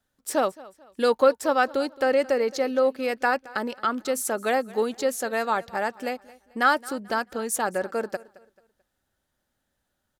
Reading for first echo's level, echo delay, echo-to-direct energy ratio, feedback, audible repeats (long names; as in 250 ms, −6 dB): −21.0 dB, 219 ms, −20.5 dB, 35%, 2